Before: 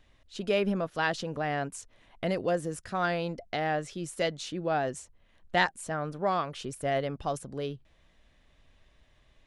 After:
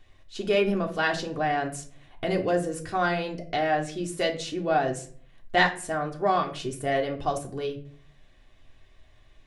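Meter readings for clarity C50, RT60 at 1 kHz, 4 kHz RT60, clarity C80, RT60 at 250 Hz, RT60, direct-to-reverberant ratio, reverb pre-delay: 12.5 dB, 0.40 s, 0.30 s, 17.0 dB, 0.70 s, 0.45 s, 1.0 dB, 3 ms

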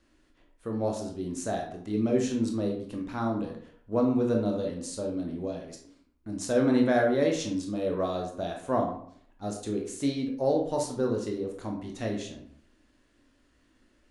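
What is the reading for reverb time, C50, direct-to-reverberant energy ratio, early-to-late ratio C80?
0.60 s, 6.0 dB, 1.0 dB, 10.0 dB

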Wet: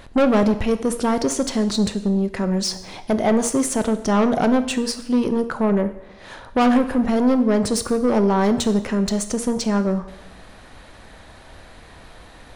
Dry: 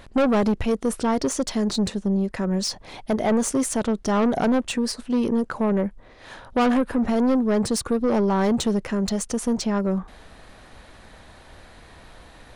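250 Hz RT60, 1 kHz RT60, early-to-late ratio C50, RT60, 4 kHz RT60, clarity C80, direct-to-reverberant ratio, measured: 0.90 s, 0.90 s, 12.5 dB, 0.85 s, 0.80 s, 15.0 dB, 9.5 dB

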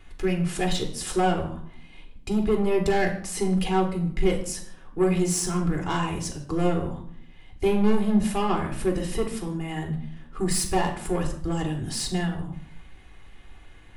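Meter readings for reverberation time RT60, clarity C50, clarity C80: 0.65 s, 9.0 dB, 12.0 dB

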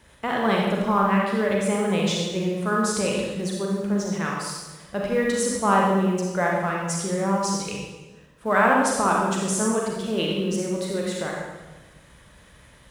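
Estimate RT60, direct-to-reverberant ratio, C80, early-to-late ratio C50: 1.2 s, -2.5 dB, 2.5 dB, -0.5 dB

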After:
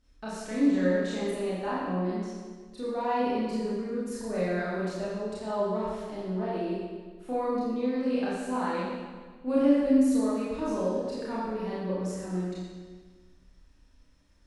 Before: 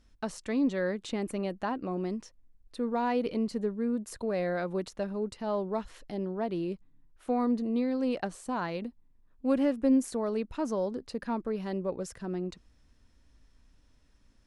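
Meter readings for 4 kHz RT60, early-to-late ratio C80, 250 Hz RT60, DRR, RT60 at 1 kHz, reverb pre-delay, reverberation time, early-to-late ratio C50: 1.4 s, 0.0 dB, 1.5 s, -9.0 dB, 1.5 s, 28 ms, 1.5 s, -2.0 dB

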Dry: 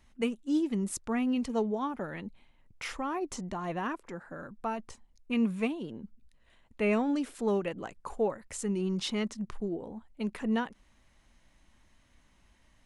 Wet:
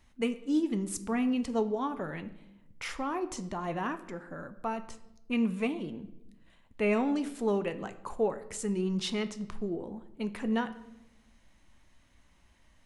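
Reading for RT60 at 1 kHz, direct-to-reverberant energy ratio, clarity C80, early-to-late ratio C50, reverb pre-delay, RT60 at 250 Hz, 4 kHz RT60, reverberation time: 0.75 s, 10.0 dB, 17.0 dB, 14.5 dB, 7 ms, 1.3 s, 0.70 s, 0.90 s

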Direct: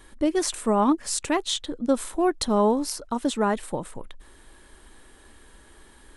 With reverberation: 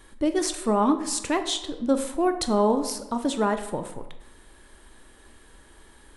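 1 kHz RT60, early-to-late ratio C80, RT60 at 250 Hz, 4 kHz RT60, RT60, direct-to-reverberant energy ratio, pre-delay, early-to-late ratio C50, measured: 1.0 s, 12.5 dB, 0.95 s, 0.60 s, 1.0 s, 8.0 dB, 17 ms, 10.5 dB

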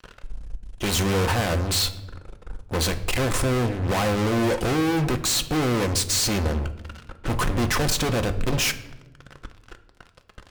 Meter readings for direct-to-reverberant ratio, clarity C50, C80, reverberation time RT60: 7.0 dB, 14.0 dB, 17.0 dB, 1.1 s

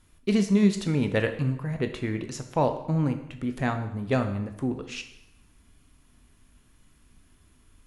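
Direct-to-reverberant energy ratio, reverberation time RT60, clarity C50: 7.0 dB, 0.85 s, 10.0 dB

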